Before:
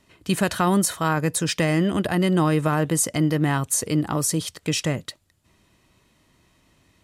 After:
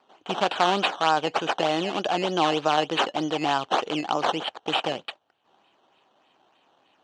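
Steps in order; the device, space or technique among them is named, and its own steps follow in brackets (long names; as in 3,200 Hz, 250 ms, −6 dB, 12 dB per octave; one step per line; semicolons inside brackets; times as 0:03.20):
circuit-bent sampling toy (sample-and-hold swept by an LFO 13×, swing 100% 3.3 Hz; loudspeaker in its box 410–5,800 Hz, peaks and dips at 780 Hz +9 dB, 2,000 Hz −8 dB, 3,000 Hz +8 dB, 5,100 Hz −7 dB)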